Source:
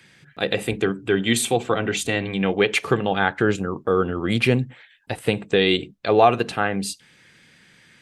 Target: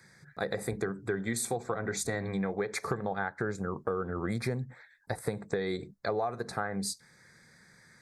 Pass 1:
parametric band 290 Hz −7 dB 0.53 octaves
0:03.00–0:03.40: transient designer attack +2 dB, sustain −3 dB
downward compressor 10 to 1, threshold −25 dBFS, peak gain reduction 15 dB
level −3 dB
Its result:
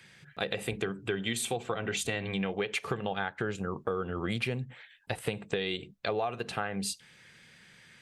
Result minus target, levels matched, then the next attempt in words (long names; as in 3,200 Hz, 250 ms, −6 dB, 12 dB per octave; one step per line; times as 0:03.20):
4,000 Hz band +7.0 dB
Butterworth band-reject 2,900 Hz, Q 1.3
parametric band 290 Hz −7 dB 0.53 octaves
0:03.00–0:03.40: transient designer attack +2 dB, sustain −3 dB
downward compressor 10 to 1, threshold −25 dBFS, peak gain reduction 15 dB
level −3 dB